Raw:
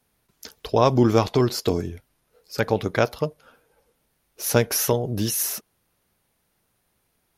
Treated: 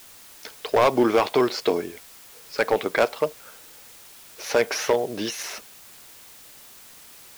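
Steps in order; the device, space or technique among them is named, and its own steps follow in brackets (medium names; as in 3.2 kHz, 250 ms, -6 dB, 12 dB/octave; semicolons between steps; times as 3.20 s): drive-through speaker (band-pass 400–3800 Hz; peaking EQ 2.2 kHz +4.5 dB 0.28 oct; hard clipper -16.5 dBFS, distortion -10 dB; white noise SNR 21 dB); trim +4.5 dB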